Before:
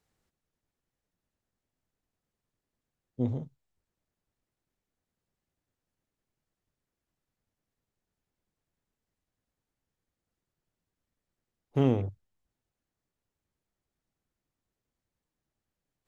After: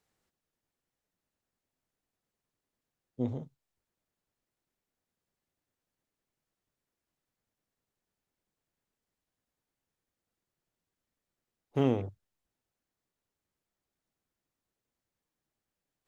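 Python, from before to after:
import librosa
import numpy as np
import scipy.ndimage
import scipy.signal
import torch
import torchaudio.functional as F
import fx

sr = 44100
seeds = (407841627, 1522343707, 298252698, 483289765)

y = fx.low_shelf(x, sr, hz=160.0, db=-8.0)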